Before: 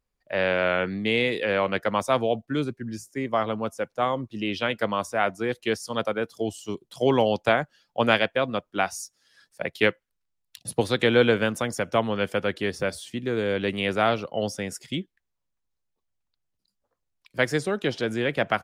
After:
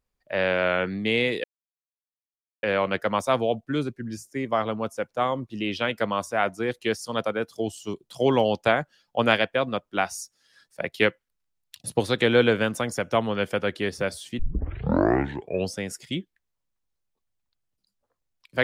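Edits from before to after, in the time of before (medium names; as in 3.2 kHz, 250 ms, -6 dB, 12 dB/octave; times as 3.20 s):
1.44 s: insert silence 1.19 s
13.20 s: tape start 1.38 s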